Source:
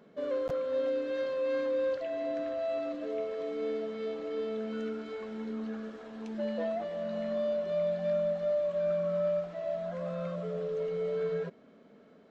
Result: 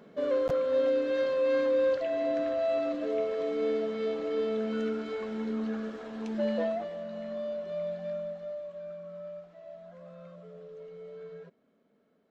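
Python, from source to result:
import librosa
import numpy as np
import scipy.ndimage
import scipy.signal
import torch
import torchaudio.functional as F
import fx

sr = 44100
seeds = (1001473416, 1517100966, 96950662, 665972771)

y = fx.gain(x, sr, db=fx.line((6.56, 4.5), (7.07, -4.0), (7.92, -4.0), (8.97, -12.5)))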